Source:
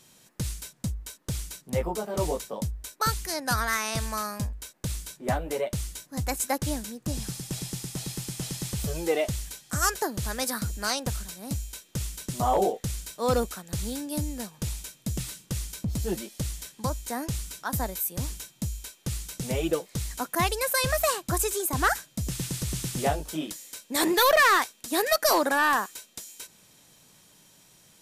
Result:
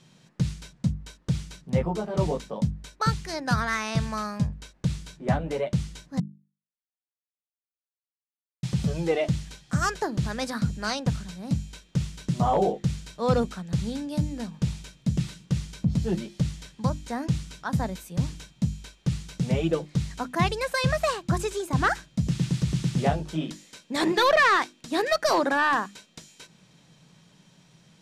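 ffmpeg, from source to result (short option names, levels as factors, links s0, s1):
-filter_complex "[0:a]asplit=3[s0][s1][s2];[s0]atrim=end=6.2,asetpts=PTS-STARTPTS,afade=t=out:st=6.196:d=0.004:c=hsin[s3];[s1]atrim=start=6.2:end=8.63,asetpts=PTS-STARTPTS,volume=0[s4];[s2]atrim=start=8.63,asetpts=PTS-STARTPTS,afade=t=in:d=0.004:c=hsin[s5];[s3][s4][s5]concat=n=3:v=0:a=1,lowpass=4800,equalizer=f=160:t=o:w=0.88:g=12,bandreject=f=50:t=h:w=6,bandreject=f=100:t=h:w=6,bandreject=f=150:t=h:w=6,bandreject=f=200:t=h:w=6,bandreject=f=250:t=h:w=6,bandreject=f=300:t=h:w=6,bandreject=f=350:t=h:w=6"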